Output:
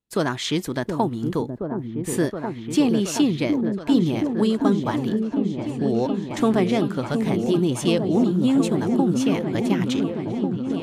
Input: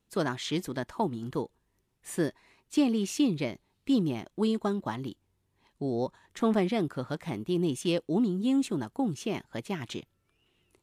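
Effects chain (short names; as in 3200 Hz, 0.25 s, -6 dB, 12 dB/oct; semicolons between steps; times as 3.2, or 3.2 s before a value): gate with hold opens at -57 dBFS; in parallel at -1.5 dB: compressor, threshold -33 dBFS, peak gain reduction 12.5 dB; on the sum: repeats that get brighter 0.722 s, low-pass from 400 Hz, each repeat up 1 oct, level -3 dB; gain +4 dB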